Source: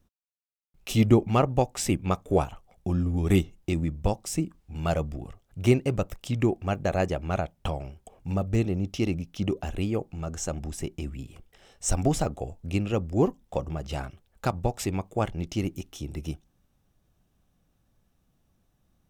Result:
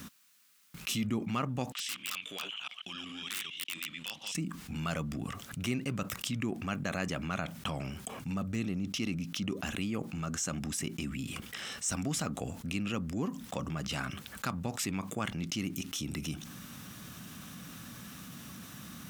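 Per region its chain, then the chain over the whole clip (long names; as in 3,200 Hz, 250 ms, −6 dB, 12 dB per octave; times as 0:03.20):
0:01.72–0:04.35: delay that plays each chunk backwards 137 ms, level −2 dB + resonant band-pass 3,100 Hz, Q 5.7 + wrap-around overflow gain 37 dB
whole clip: high-pass filter 210 Hz 12 dB per octave; flat-topped bell 540 Hz −12 dB; envelope flattener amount 70%; level −9 dB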